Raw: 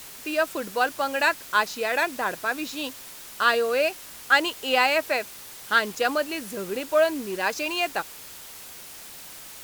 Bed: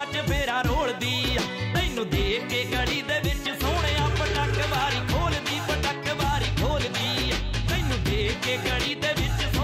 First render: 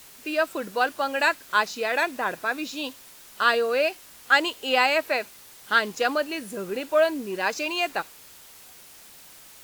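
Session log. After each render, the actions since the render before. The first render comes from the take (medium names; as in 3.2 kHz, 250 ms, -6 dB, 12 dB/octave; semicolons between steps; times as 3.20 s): noise print and reduce 6 dB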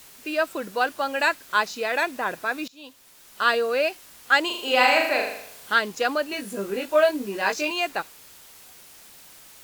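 2.68–3.48 s: fade in, from -22 dB; 4.46–5.74 s: flutter echo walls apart 6.9 m, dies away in 0.71 s; 6.30–7.71 s: doubling 20 ms -3 dB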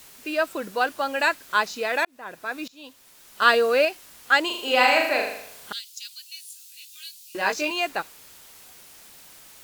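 2.05–2.77 s: fade in; 3.42–3.85 s: gain +3.5 dB; 5.72–7.35 s: inverse Chebyshev high-pass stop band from 620 Hz, stop band 80 dB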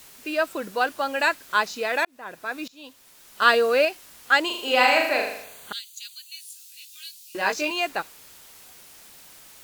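5.44–6.41 s: Butterworth band-stop 5.3 kHz, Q 4.7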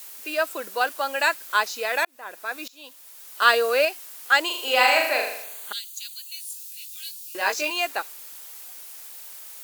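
high-pass 420 Hz 12 dB/octave; treble shelf 8.4 kHz +10.5 dB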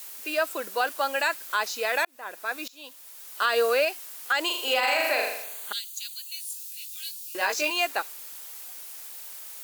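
peak limiter -13.5 dBFS, peak gain reduction 10.5 dB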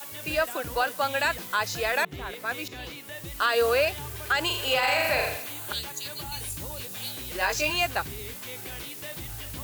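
add bed -15 dB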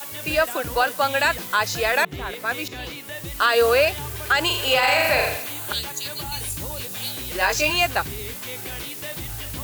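trim +5.5 dB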